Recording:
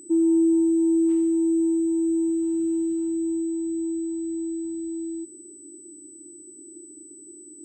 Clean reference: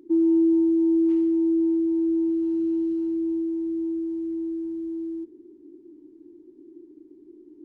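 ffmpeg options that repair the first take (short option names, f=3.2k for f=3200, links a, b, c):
-af "bandreject=f=8k:w=30"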